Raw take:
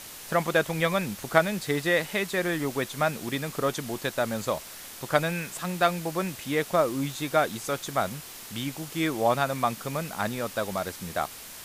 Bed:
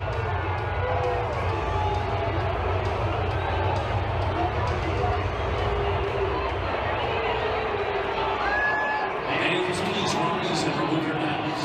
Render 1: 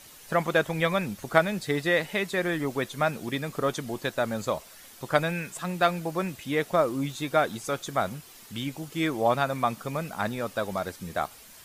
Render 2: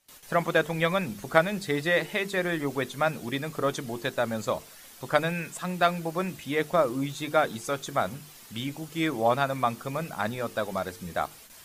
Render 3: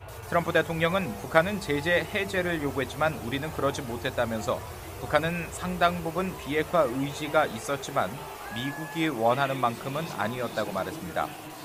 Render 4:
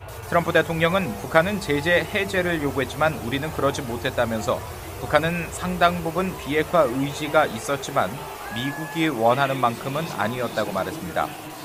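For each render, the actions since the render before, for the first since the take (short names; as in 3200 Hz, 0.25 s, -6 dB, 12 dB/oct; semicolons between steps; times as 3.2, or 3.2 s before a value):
denoiser 9 dB, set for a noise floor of -43 dBFS
notches 50/100/150/200/250/300/350/400/450 Hz; gate with hold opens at -39 dBFS
add bed -14.5 dB
gain +5 dB; limiter -1 dBFS, peak gain reduction 2 dB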